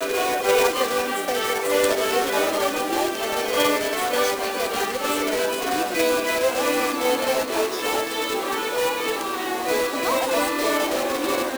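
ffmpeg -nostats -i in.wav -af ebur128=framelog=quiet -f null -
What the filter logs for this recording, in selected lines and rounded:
Integrated loudness:
  I:         -22.2 LUFS
  Threshold: -32.2 LUFS
Loudness range:
  LRA:         1.8 LU
  Threshold: -42.4 LUFS
  LRA low:   -23.3 LUFS
  LRA high:  -21.5 LUFS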